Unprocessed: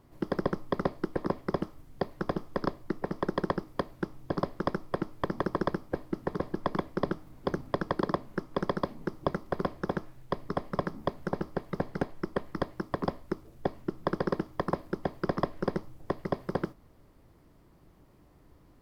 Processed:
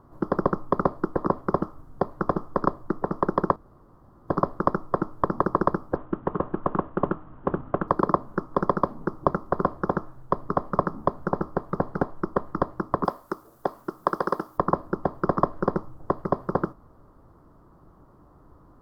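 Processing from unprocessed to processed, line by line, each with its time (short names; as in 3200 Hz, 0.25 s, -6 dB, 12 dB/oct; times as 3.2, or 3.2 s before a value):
3.56–4.28 room tone
5.96–7.88 CVSD 16 kbps
13.05–14.58 RIAA curve recording
whole clip: resonant high shelf 1700 Hz -10.5 dB, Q 3; gain +5 dB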